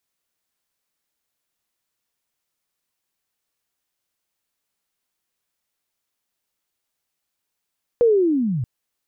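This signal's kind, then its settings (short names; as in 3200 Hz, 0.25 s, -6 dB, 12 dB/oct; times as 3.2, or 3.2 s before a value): chirp linear 490 Hz -> 110 Hz -11 dBFS -> -21 dBFS 0.63 s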